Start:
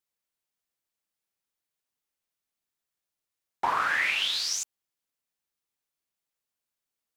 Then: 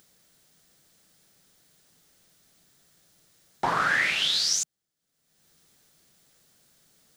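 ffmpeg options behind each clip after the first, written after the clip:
ffmpeg -i in.wav -af "equalizer=frequency=160:width_type=o:width=0.67:gain=9,equalizer=frequency=1000:width_type=o:width=0.67:gain=-8,equalizer=frequency=2500:width_type=o:width=0.67:gain=-7,equalizer=frequency=16000:width_type=o:width=0.67:gain=-10,acompressor=mode=upward:threshold=-51dB:ratio=2.5,volume=6.5dB" out.wav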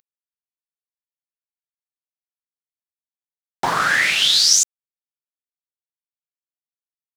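ffmpeg -i in.wav -af "highshelf=frequency=3600:gain=9.5,aeval=exprs='val(0)*gte(abs(val(0)),0.00944)':channel_layout=same,volume=4.5dB" out.wav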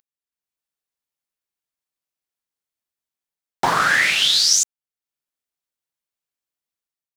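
ffmpeg -i in.wav -af "dynaudnorm=framelen=160:gausssize=5:maxgain=9dB,volume=-2.5dB" out.wav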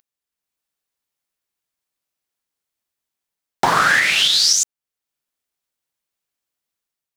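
ffmpeg -i in.wav -af "alimiter=limit=-10.5dB:level=0:latency=1:release=386,volume=5.5dB" out.wav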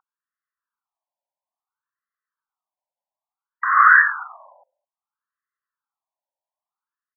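ffmpeg -i in.wav -filter_complex "[0:a]acrossover=split=350[link_01][link_02];[link_01]adelay=210[link_03];[link_03][link_02]amix=inputs=2:normalize=0,highpass=frequency=230:width_type=q:width=0.5412,highpass=frequency=230:width_type=q:width=1.307,lowpass=frequency=2200:width_type=q:width=0.5176,lowpass=frequency=2200:width_type=q:width=0.7071,lowpass=frequency=2200:width_type=q:width=1.932,afreqshift=-140,afftfilt=real='re*between(b*sr/1024,720*pow(1500/720,0.5+0.5*sin(2*PI*0.59*pts/sr))/1.41,720*pow(1500/720,0.5+0.5*sin(2*PI*0.59*pts/sr))*1.41)':imag='im*between(b*sr/1024,720*pow(1500/720,0.5+0.5*sin(2*PI*0.59*pts/sr))/1.41,720*pow(1500/720,0.5+0.5*sin(2*PI*0.59*pts/sr))*1.41)':win_size=1024:overlap=0.75,volume=4.5dB" out.wav

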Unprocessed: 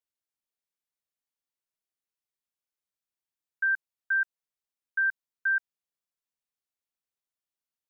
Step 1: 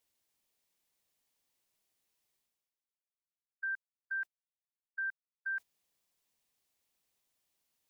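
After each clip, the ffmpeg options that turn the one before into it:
ffmpeg -i in.wav -af "equalizer=frequency=1400:width=2.6:gain=-5.5,agate=range=-24dB:threshold=-33dB:ratio=16:detection=peak,areverse,acompressor=mode=upward:threshold=-43dB:ratio=2.5,areverse,volume=-6.5dB" out.wav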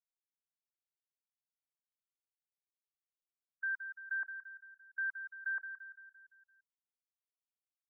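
ffmpeg -i in.wav -filter_complex "[0:a]asplit=2[link_01][link_02];[link_02]aecho=0:1:171|342|513|684|855|1026:0.376|0.203|0.11|0.0592|0.032|0.0173[link_03];[link_01][link_03]amix=inputs=2:normalize=0,afftfilt=real='re*gte(hypot(re,im),0.000794)':imag='im*gte(hypot(re,im),0.000794)':win_size=1024:overlap=0.75,lowpass=frequency=1300:width=0.5412,lowpass=frequency=1300:width=1.3066,volume=7.5dB" out.wav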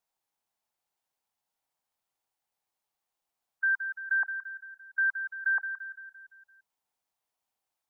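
ffmpeg -i in.wav -af "equalizer=frequency=820:width=1.8:gain=12,volume=8dB" out.wav

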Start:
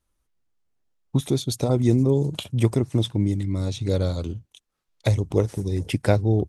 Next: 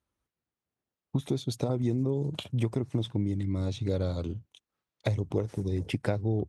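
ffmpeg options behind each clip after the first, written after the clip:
ffmpeg -i in.wav -af "highpass=77,highshelf=frequency=5600:gain=-11.5,acompressor=threshold=-21dB:ratio=6,volume=-3dB" out.wav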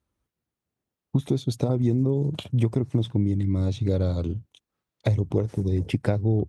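ffmpeg -i in.wav -af "lowshelf=frequency=460:gain=6,volume=1dB" out.wav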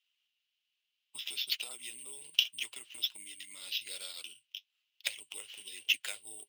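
ffmpeg -i in.wav -af "acrusher=samples=5:mix=1:aa=0.000001,flanger=delay=2.5:depth=7.6:regen=-56:speed=1.2:shape=sinusoidal,highpass=frequency=2900:width_type=q:width=6.7,volume=4.5dB" out.wav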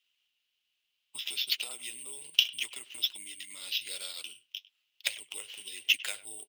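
ffmpeg -i in.wav -filter_complex "[0:a]asplit=2[link_01][link_02];[link_02]adelay=100,highpass=300,lowpass=3400,asoftclip=type=hard:threshold=-15dB,volume=-18dB[link_03];[link_01][link_03]amix=inputs=2:normalize=0,volume=3.5dB" out.wav

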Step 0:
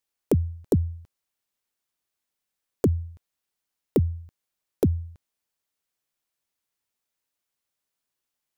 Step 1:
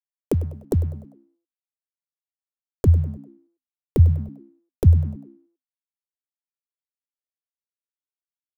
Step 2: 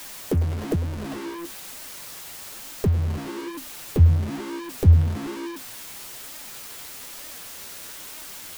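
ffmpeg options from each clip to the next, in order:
ffmpeg -i in.wav -filter_complex "[0:a]asubboost=boost=9:cutoff=90,aeval=exprs='sgn(val(0))*max(abs(val(0))-0.00447,0)':channel_layout=same,asplit=5[link_01][link_02][link_03][link_04][link_05];[link_02]adelay=99,afreqshift=64,volume=-17.5dB[link_06];[link_03]adelay=198,afreqshift=128,volume=-24.8dB[link_07];[link_04]adelay=297,afreqshift=192,volume=-32.2dB[link_08];[link_05]adelay=396,afreqshift=256,volume=-39.5dB[link_09];[link_01][link_06][link_07][link_08][link_09]amix=inputs=5:normalize=0" out.wav
ffmpeg -i in.wav -af "aeval=exprs='val(0)+0.5*0.0708*sgn(val(0))':channel_layout=same,flanger=delay=3.2:depth=9.6:regen=43:speed=1.1:shape=sinusoidal" out.wav

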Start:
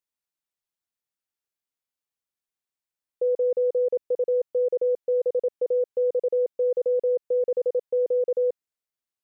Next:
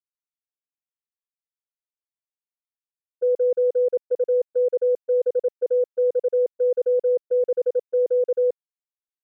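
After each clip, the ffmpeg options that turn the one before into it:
ffmpeg -i in.wav -af "agate=range=-24dB:threshold=-25dB:ratio=16:detection=peak,volume=3dB" out.wav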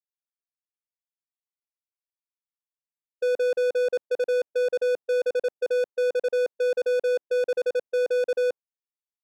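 ffmpeg -i in.wav -filter_complex "[0:a]asplit=2[link_01][link_02];[link_02]highpass=frequency=720:poles=1,volume=23dB,asoftclip=type=tanh:threshold=-15.5dB[link_03];[link_01][link_03]amix=inputs=2:normalize=0,lowpass=frequency=1100:poles=1,volume=-6dB,agate=range=-33dB:threshold=-27dB:ratio=3:detection=peak,adynamicsmooth=sensitivity=5.5:basefreq=720,volume=-2.5dB" out.wav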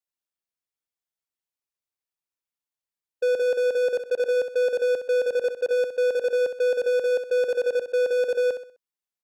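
ffmpeg -i in.wav -af "aecho=1:1:64|128|192|256:0.335|0.124|0.0459|0.017,volume=1.5dB" out.wav

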